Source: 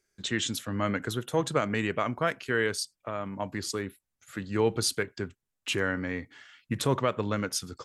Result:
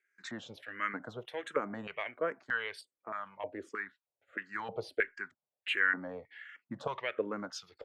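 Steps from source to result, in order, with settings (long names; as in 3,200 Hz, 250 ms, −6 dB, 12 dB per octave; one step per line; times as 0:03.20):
auto-filter band-pass square 1.6 Hz 600–1,800 Hz
0:03.69–0:04.45: low-pass filter 5,400 Hz 12 dB per octave
frequency shifter mixed with the dry sound −1.4 Hz
level +6 dB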